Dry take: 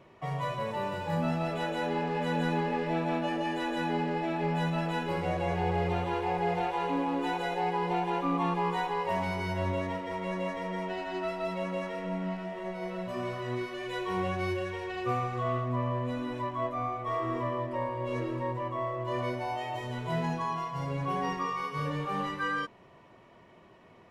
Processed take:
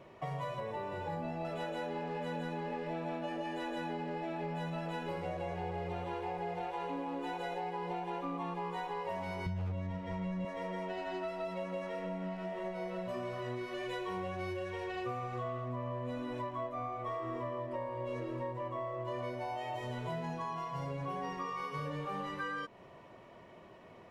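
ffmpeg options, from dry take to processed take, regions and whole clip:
-filter_complex "[0:a]asettb=1/sr,asplit=3[a][b][c];[a]atrim=end=0.604[d];[b]atrim=start=0.6:end=1.45,asetpts=PTS-STARTPTS,afade=t=in:d=0.004:c=qsin,afade=t=out:st=0.846:d=0.004:c=qsin,highshelf=f=3.4k:g=-9,bandreject=f=1.3k:w=5.6,aecho=1:1:2.6:0.4,atrim=end_sample=37485[e];[c]atrim=start=1.446[f];[d][e]acrossfade=d=0.004:c1=hsin:c2=qsin[g];[g][f]acrossfade=d=0.004:c1=qsin:c2=hsin,asettb=1/sr,asplit=3[h][i][j];[h]atrim=end=9.464[k];[i]atrim=start=9.46:end=10.45,asetpts=PTS-STARTPTS,afade=t=in:d=0.004:c=qsin,afade=t=out:st=0.986:d=0.004:c=qsin,lowpass=7.9k,lowshelf=f=230:t=q:w=1.5:g=13,aeval=exprs='0.188*(abs(mod(val(0)/0.188+3,4)-2)-1)':c=same[l];[j]atrim=start=10.446[m];[k][l]acrossfade=d=0.004:c1=hsin:c2=qsin[n];[n][m]acrossfade=d=0.004:c1=qsin:c2=hsin,equalizer=f=580:t=o:w=0.69:g=4,acompressor=threshold=-36dB:ratio=6"

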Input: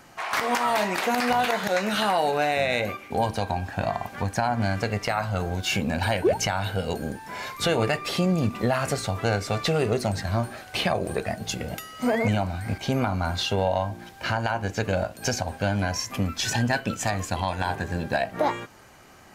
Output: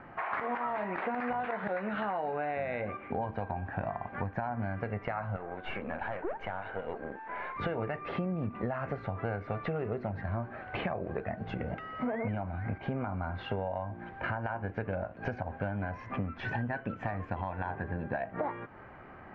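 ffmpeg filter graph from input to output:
-filter_complex "[0:a]asettb=1/sr,asplit=3[a][b][c];[a]atrim=end=5.364[d];[b]atrim=start=5.36:end=7.56,asetpts=PTS-STARTPTS,afade=t=in:d=0.004:c=qsin,afade=t=out:st=2.196:d=0.004:c=qsin,highpass=380,equalizer=f=5.3k:t=o:w=0.39:g=-9.5,aeval=exprs='(tanh(17.8*val(0)+0.7)-tanh(0.7))/17.8':c=same[e];[c]atrim=start=7.556[f];[d][e]acrossfade=d=0.004:c1=hsin:c2=qsin[g];[g][f]acrossfade=d=0.004:c1=qsin:c2=hsin,lowpass=f=2k:w=0.5412,lowpass=f=2k:w=1.3066,acompressor=threshold=-35dB:ratio=4,volume=2dB"

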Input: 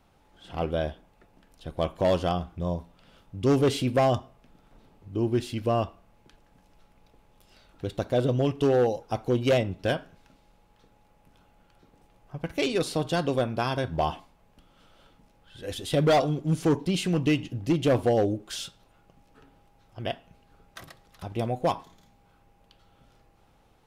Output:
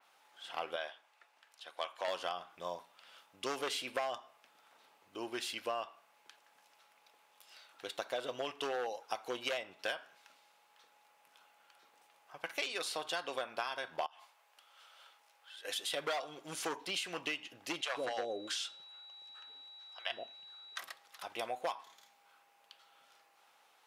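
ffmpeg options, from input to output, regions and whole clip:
-filter_complex "[0:a]asettb=1/sr,asplit=3[a][b][c];[a]atrim=end=0.764[d];[b]atrim=start=0.76:end=2.08,asetpts=PTS-STARTPTS,afade=t=in:d=0.004:c=qsin,afade=t=out:st=1.316:d=0.004:c=qsin,highpass=f=870:p=1,highshelf=f=8.9k:g=-10[e];[c]atrim=start=2.076[f];[d][e]acrossfade=d=0.004:c1=hsin:c2=qsin[g];[g][f]acrossfade=d=0.004:c1=qsin:c2=hsin,asettb=1/sr,asplit=3[h][i][j];[h]atrim=end=14.064[k];[i]atrim=start=14.06:end=15.65,asetpts=PTS-STARTPTS,afade=t=in:d=0.004:c=qsin,afade=t=out:st=1.586:d=0.004:c=qsin,acompressor=threshold=-45dB:ratio=12:attack=3.2:release=140:knee=1:detection=peak,highpass=490[l];[j]atrim=start=15.646[m];[k][l]acrossfade=d=0.004:c1=hsin:c2=qsin[n];[n][m]acrossfade=d=0.004:c1=qsin:c2=hsin,asettb=1/sr,asplit=3[o][p][q];[o]atrim=end=17.814[r];[p]atrim=start=17.81:end=20.79,asetpts=PTS-STARTPTS,afade=t=in:d=0.004:c=qsin,afade=t=out:st=2.976:d=0.004:c=qsin,lowpass=8.8k,aeval=exprs='val(0)+0.00224*sin(2*PI*3900*n/s)':c=same,acrossover=split=610[s][t];[s]adelay=120[u];[u][t]amix=inputs=2:normalize=0,atrim=end_sample=131418[v];[q]atrim=start=20.786[w];[r][v]acrossfade=d=0.004:c1=hsin:c2=qsin[x];[x][w]acrossfade=d=0.004:c1=qsin:c2=hsin,highpass=1k,acompressor=threshold=-36dB:ratio=6,adynamicequalizer=threshold=0.00178:dfrequency=3900:dqfactor=0.7:tfrequency=3900:tqfactor=0.7:attack=5:release=100:ratio=0.375:range=2.5:mode=cutabove:tftype=highshelf,volume=2.5dB"

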